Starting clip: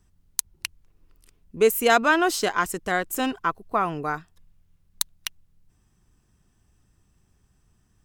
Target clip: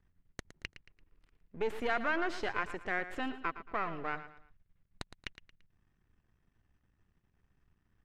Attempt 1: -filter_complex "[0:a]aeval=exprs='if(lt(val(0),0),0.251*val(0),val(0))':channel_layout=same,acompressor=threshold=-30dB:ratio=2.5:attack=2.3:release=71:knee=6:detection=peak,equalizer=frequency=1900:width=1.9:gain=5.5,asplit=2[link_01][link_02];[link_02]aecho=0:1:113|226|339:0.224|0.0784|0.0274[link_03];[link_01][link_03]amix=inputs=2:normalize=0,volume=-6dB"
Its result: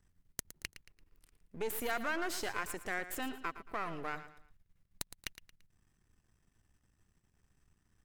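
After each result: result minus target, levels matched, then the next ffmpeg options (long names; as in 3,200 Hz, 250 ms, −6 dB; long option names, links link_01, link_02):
4,000 Hz band +4.5 dB; downward compressor: peak gain reduction +4 dB
-filter_complex "[0:a]aeval=exprs='if(lt(val(0),0),0.251*val(0),val(0))':channel_layout=same,acompressor=threshold=-30dB:ratio=2.5:attack=2.3:release=71:knee=6:detection=peak,lowpass=3100,equalizer=frequency=1900:width=1.9:gain=5.5,asplit=2[link_01][link_02];[link_02]aecho=0:1:113|226|339:0.224|0.0784|0.0274[link_03];[link_01][link_03]amix=inputs=2:normalize=0,volume=-6dB"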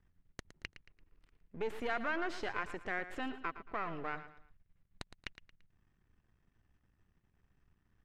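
downward compressor: peak gain reduction +4 dB
-filter_complex "[0:a]aeval=exprs='if(lt(val(0),0),0.251*val(0),val(0))':channel_layout=same,acompressor=threshold=-23.5dB:ratio=2.5:attack=2.3:release=71:knee=6:detection=peak,lowpass=3100,equalizer=frequency=1900:width=1.9:gain=5.5,asplit=2[link_01][link_02];[link_02]aecho=0:1:113|226|339:0.224|0.0784|0.0274[link_03];[link_01][link_03]amix=inputs=2:normalize=0,volume=-6dB"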